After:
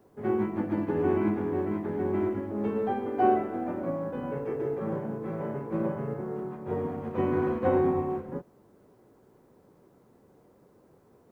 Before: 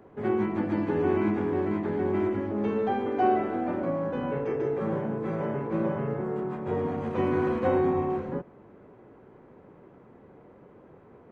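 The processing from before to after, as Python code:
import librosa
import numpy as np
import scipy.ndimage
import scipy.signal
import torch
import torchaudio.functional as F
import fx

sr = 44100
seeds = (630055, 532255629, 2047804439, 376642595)

y = fx.high_shelf(x, sr, hz=2600.0, db=-9.5)
y = fx.quant_dither(y, sr, seeds[0], bits=12, dither='triangular')
y = fx.upward_expand(y, sr, threshold_db=-38.0, expansion=1.5)
y = y * librosa.db_to_amplitude(1.5)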